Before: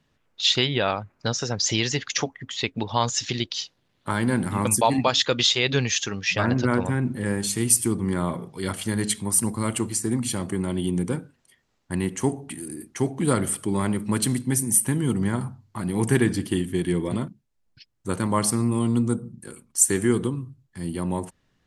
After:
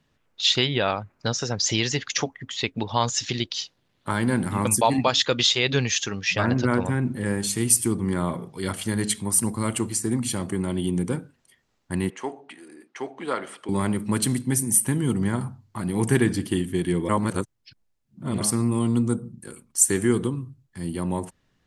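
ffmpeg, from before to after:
ffmpeg -i in.wav -filter_complex "[0:a]asettb=1/sr,asplit=3[link_01][link_02][link_03];[link_01]atrim=end=12.104[link_04];[link_02]atrim=start=12.1:end=13.69,asetpts=PTS-STARTPTS,afade=type=in:duration=0.004:curve=qsin,afade=type=out:start_time=1.586:duration=0.004:curve=qsin,highpass=530,lowpass=3400[link_05];[link_03]atrim=start=13.686[link_06];[link_04][link_05]acrossfade=duration=0.004:curve1=hsin:curve2=qsin[link_07];[link_07][link_06]acrossfade=duration=0.004:curve1=qsin:curve2=hsin,asplit=3[link_08][link_09][link_10];[link_08]atrim=end=17.092[link_11];[link_09]atrim=start=17.088:end=18.412,asetpts=PTS-STARTPTS,areverse[link_12];[link_10]atrim=start=18.408[link_13];[link_11][link_12]acrossfade=duration=0.004:curve1=hsin:curve2=hsin[link_14];[link_14][link_13]acrossfade=duration=0.004:curve1=hsin:curve2=hsin" out.wav

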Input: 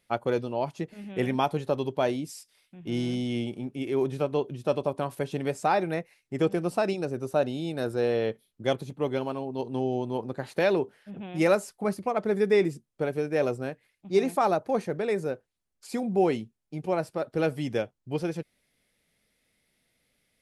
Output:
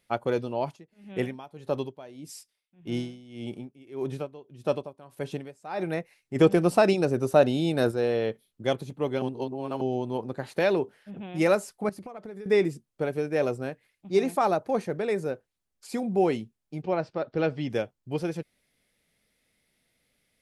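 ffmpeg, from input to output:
ffmpeg -i in.wav -filter_complex "[0:a]asplit=3[link_01][link_02][link_03];[link_01]afade=type=out:start_time=0.75:duration=0.02[link_04];[link_02]aeval=exprs='val(0)*pow(10,-20*(0.5-0.5*cos(2*PI*1.7*n/s))/20)':channel_layout=same,afade=type=in:start_time=0.75:duration=0.02,afade=type=out:start_time=5.79:duration=0.02[link_05];[link_03]afade=type=in:start_time=5.79:duration=0.02[link_06];[link_04][link_05][link_06]amix=inputs=3:normalize=0,asplit=3[link_07][link_08][link_09];[link_07]afade=type=out:start_time=6.35:duration=0.02[link_10];[link_08]acontrast=58,afade=type=in:start_time=6.35:duration=0.02,afade=type=out:start_time=7.9:duration=0.02[link_11];[link_09]afade=type=in:start_time=7.9:duration=0.02[link_12];[link_10][link_11][link_12]amix=inputs=3:normalize=0,asettb=1/sr,asplit=3[link_13][link_14][link_15];[link_13]atrim=end=11.894[link_16];[link_14]atrim=start=11.89:end=12.46,asetpts=PTS-STARTPTS,afade=type=in:duration=0.004:curve=qsin,afade=type=out:start_time=0.566:duration=0.004:curve=qsin,acompressor=threshold=-36dB:ratio=20:attack=3.2:release=140:knee=1:detection=peak[link_17];[link_15]atrim=start=12.456[link_18];[link_16][link_17]acrossfade=duration=0.004:curve1=hsin:curve2=qsin[link_19];[link_19][link_18]acrossfade=duration=0.004:curve1=qsin:curve2=hsin,asettb=1/sr,asplit=3[link_20][link_21][link_22];[link_20]atrim=end=16.824[link_23];[link_21]atrim=start=16.82:end=17.7,asetpts=PTS-STARTPTS,afade=type=in:duration=0.004:curve=qsin,afade=type=out:start_time=0.876:duration=0.004:curve=qsin,lowpass=frequency=5100:width=0.5412,lowpass=frequency=5100:width=1.3066[link_24];[link_22]atrim=start=17.696[link_25];[link_23][link_24]acrossfade=duration=0.004:curve1=hsin:curve2=qsin[link_26];[link_26][link_25]acrossfade=duration=0.004:curve1=qsin:curve2=hsin,asplit=3[link_27][link_28][link_29];[link_27]atrim=end=9.222[link_30];[link_28]atrim=start=9.218:end=9.812,asetpts=PTS-STARTPTS,areverse[link_31];[link_29]atrim=start=9.808[link_32];[link_30][link_31]acrossfade=duration=0.004:curve1=hsin:curve2=hsin[link_33];[link_33][link_32]acrossfade=duration=0.004:curve1=hsin:curve2=hsin" out.wav

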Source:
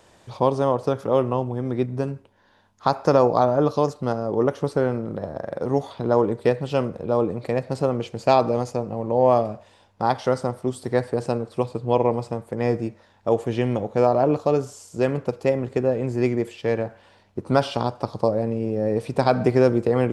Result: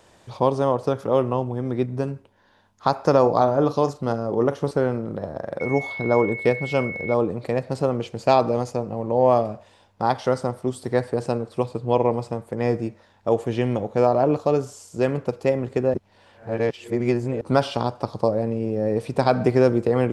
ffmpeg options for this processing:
ffmpeg -i in.wav -filter_complex "[0:a]asettb=1/sr,asplit=3[link_01][link_02][link_03];[link_01]atrim=end=3.204[link_04];[link_02]atrim=start=3.2:end=4.71,asetpts=PTS-STARTPTS,afade=type=in:duration=0.004:curve=qsin,afade=type=out:start_time=1.506:duration=0.004:curve=qsin,asplit=2[link_05][link_06];[link_06]adelay=43,volume=-13.5dB[link_07];[link_05][link_07]amix=inputs=2:normalize=0,atrim=end_sample=66591[link_08];[link_03]atrim=start=4.706[link_09];[link_04][link_08]acrossfade=duration=0.004:curve1=hsin:curve2=qsin[link_10];[link_10][link_09]acrossfade=duration=0.004:curve1=qsin:curve2=hsin,asettb=1/sr,asplit=3[link_11][link_12][link_13];[link_11]atrim=end=5.604[link_14];[link_12]atrim=start=5.6:end=7.14,asetpts=PTS-STARTPTS,afade=type=in:duration=0.004:curve=qsin,afade=type=out:start_time=1.536:duration=0.004:curve=qsin,aeval=exprs='val(0)+0.0316*sin(2*PI*2200*n/s)':channel_layout=same[link_15];[link_13]atrim=start=7.136[link_16];[link_14][link_15]acrossfade=duration=0.004:curve1=hsin:curve2=qsin[link_17];[link_17][link_16]acrossfade=duration=0.004:curve1=qsin:curve2=hsin,asplit=3[link_18][link_19][link_20];[link_18]atrim=end=15.942[link_21];[link_19]atrim=start=15.938:end=17.412,asetpts=PTS-STARTPTS,areverse[link_22];[link_20]atrim=start=17.408[link_23];[link_21][link_22]acrossfade=duration=0.004:curve1=hsin:curve2=hsin[link_24];[link_24][link_23]acrossfade=duration=0.004:curve1=hsin:curve2=hsin" out.wav

